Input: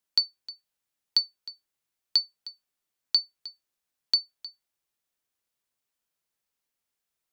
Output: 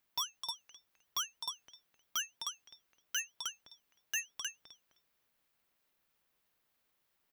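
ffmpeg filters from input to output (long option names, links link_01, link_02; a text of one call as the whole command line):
ffmpeg -i in.wav -filter_complex "[0:a]equalizer=frequency=7600:width=0.61:gain=-11,asplit=2[link_01][link_02];[link_02]acompressor=threshold=-35dB:ratio=6,volume=0dB[link_03];[link_01][link_03]amix=inputs=2:normalize=0,asplit=2[link_04][link_05];[link_05]adelay=259,lowpass=frequency=1900:poles=1,volume=-12.5dB,asplit=2[link_06][link_07];[link_07]adelay=259,lowpass=frequency=1900:poles=1,volume=0.31,asplit=2[link_08][link_09];[link_09]adelay=259,lowpass=frequency=1900:poles=1,volume=0.31[link_10];[link_04][link_06][link_08][link_10]amix=inputs=4:normalize=0,aeval=exprs='(tanh(89.1*val(0)+0.6)-tanh(0.6))/89.1':channel_layout=same,aeval=exprs='val(0)*sin(2*PI*1400*n/s+1400*0.35/3.1*sin(2*PI*3.1*n/s))':channel_layout=same,volume=9dB" out.wav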